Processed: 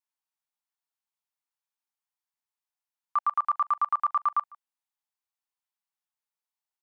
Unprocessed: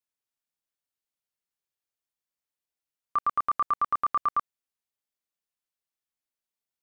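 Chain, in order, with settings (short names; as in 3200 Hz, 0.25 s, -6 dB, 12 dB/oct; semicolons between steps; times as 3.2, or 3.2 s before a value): resonant low shelf 600 Hz -12 dB, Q 3; echo 0.151 s -24 dB; gain -4 dB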